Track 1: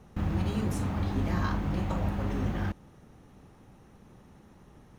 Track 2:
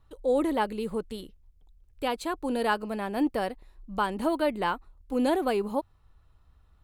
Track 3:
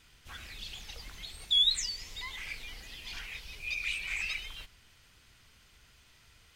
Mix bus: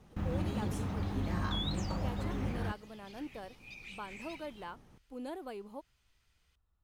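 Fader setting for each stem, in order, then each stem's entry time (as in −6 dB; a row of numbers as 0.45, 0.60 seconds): −5.5, −17.0, −15.0 decibels; 0.00, 0.00, 0.00 seconds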